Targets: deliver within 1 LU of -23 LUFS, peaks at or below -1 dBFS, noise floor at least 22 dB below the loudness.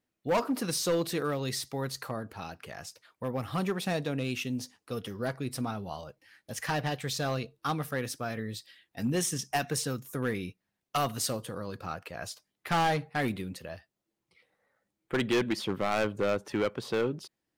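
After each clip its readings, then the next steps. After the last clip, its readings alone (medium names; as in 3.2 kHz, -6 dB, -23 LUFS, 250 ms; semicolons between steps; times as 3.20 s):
clipped samples 1.3%; clipping level -22.5 dBFS; loudness -32.5 LUFS; peak level -22.5 dBFS; loudness target -23.0 LUFS
-> clip repair -22.5 dBFS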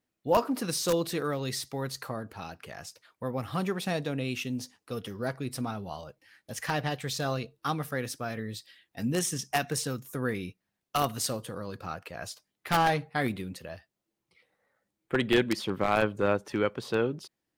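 clipped samples 0.0%; loudness -31.0 LUFS; peak level -13.5 dBFS; loudness target -23.0 LUFS
-> trim +8 dB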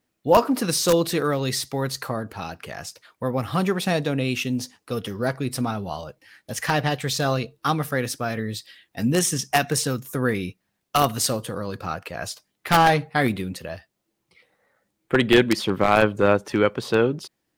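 loudness -23.0 LUFS; peak level -5.5 dBFS; noise floor -77 dBFS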